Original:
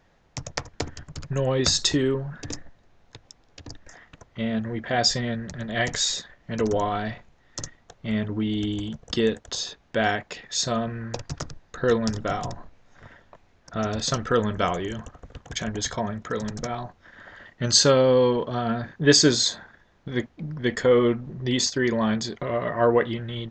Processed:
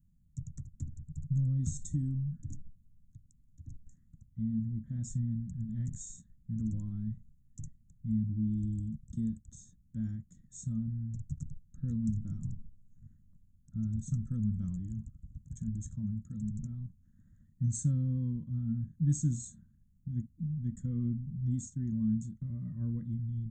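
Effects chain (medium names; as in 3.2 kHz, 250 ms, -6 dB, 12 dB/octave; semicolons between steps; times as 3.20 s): harmonic-percussive split percussive -3 dB; wow and flutter 19 cents; inverse Chebyshev band-stop 390–5100 Hz, stop band 40 dB; trim -1 dB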